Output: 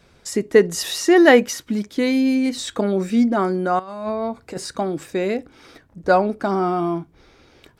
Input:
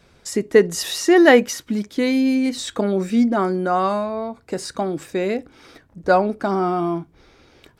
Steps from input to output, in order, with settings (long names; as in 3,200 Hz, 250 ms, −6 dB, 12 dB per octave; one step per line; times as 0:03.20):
0:03.79–0:04.58: compressor whose output falls as the input rises −26 dBFS, ratio −0.5